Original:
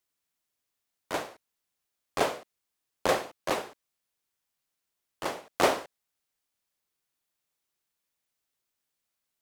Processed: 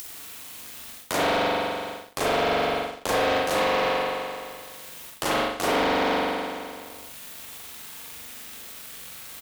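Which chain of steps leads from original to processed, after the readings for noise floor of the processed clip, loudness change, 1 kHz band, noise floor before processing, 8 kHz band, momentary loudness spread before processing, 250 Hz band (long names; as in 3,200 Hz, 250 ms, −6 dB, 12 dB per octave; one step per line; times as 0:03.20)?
−43 dBFS, +6.0 dB, +9.0 dB, −84 dBFS, +7.0 dB, 13 LU, +10.0 dB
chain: spring reverb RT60 1.2 s, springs 42 ms, chirp 20 ms, DRR −8.5 dB
in parallel at −2.5 dB: upward compression, threshold −27 dBFS
on the sum: high-pass filter 53 Hz
reversed playback
downward compressor 10 to 1, threshold −27 dBFS, peak gain reduction 20.5 dB
reversed playback
low-shelf EQ 87 Hz +9.5 dB
double-tracking delay 38 ms −8.5 dB
leveller curve on the samples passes 2
high-shelf EQ 4,300 Hz +10.5 dB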